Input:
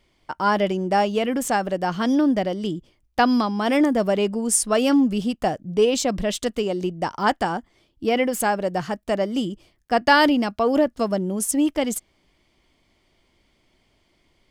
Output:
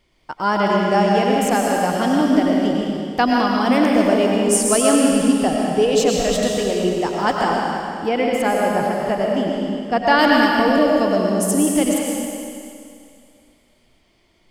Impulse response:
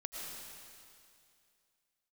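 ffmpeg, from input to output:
-filter_complex "[0:a]asettb=1/sr,asplit=3[s0][s1][s2];[s0]atrim=end=8.084[s3];[s1]atrim=start=8.08:end=10.19,asetpts=PTS-STARTPTS,afade=t=in:d=0.004:c=qsin,afade=t=out:st=2.106:d=0.004:c=qsin,lowpass=f=3200:p=1[s4];[s2]atrim=start=10.186[s5];[s3][s4]acrossfade=d=0.004:c1=hsin:c2=qsin[s6];[s6][s5]acrossfade=d=0.004:c1=qsin:c2=hsin[s7];[1:a]atrim=start_sample=2205[s8];[s7][s8]afir=irnorm=-1:irlink=0,volume=1.68"

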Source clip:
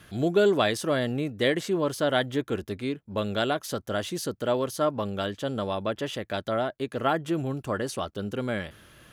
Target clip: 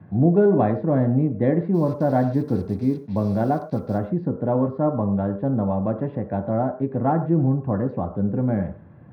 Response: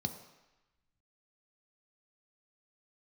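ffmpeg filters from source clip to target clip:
-filter_complex "[0:a]lowpass=f=1500:w=0.5412,lowpass=f=1500:w=1.3066,asplit=3[s0][s1][s2];[s0]afade=t=out:st=1.73:d=0.02[s3];[s1]acrusher=bits=7:mix=0:aa=0.5,afade=t=in:st=1.73:d=0.02,afade=t=out:st=3.97:d=0.02[s4];[s2]afade=t=in:st=3.97:d=0.02[s5];[s3][s4][s5]amix=inputs=3:normalize=0[s6];[1:a]atrim=start_sample=2205,atrim=end_sample=6174[s7];[s6][s7]afir=irnorm=-1:irlink=0"

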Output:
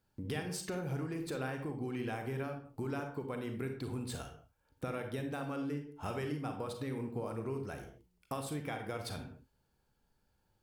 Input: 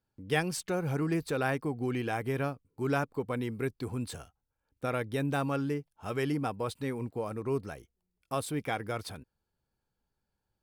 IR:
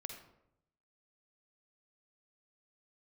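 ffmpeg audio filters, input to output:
-filter_complex "[0:a]acompressor=threshold=0.00794:ratio=12[s0];[1:a]atrim=start_sample=2205,afade=t=out:st=0.36:d=0.01,atrim=end_sample=16317,asetrate=57330,aresample=44100[s1];[s0][s1]afir=irnorm=-1:irlink=0,volume=3.98"

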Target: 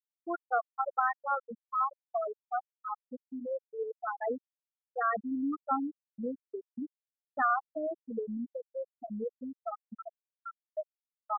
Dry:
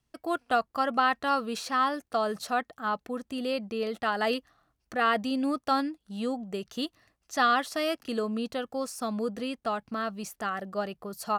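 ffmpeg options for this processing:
-af "afftfilt=real='re*gte(hypot(re,im),0.251)':imag='im*gte(hypot(re,im),0.251)':win_size=1024:overlap=0.75,agate=range=0.0224:threshold=0.00355:ratio=3:detection=peak,volume=0.708"

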